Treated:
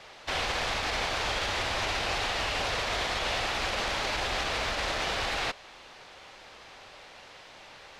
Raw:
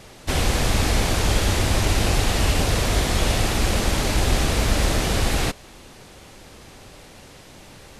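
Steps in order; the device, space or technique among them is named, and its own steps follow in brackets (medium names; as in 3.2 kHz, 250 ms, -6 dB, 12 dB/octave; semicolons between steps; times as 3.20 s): DJ mixer with the lows and highs turned down (three-band isolator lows -17 dB, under 540 Hz, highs -20 dB, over 5.3 kHz; peak limiter -21 dBFS, peak gain reduction 6.5 dB)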